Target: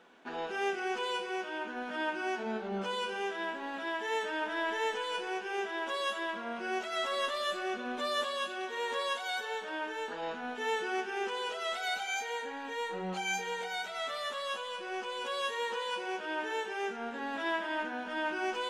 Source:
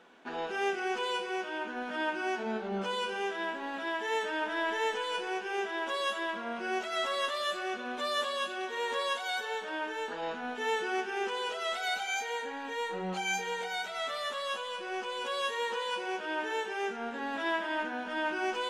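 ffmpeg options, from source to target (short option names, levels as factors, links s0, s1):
-filter_complex "[0:a]asettb=1/sr,asplit=3[s0][s1][s2];[s0]atrim=end=7.124[s3];[s1]atrim=start=7.12:end=8.24,asetpts=PTS-STARTPTS,afade=t=in:d=0.004:c=qsin,afade=t=out:st=1.116:d=0.004:c=qsin,lowshelf=f=360:g=5.5[s4];[s2]atrim=start=8.236[s5];[s3][s4]acrossfade=d=0.004:c1=hsin:c2=qsin[s6];[s6][s5]acrossfade=d=0.004:c1=qsin:c2=hsin,volume=0.841"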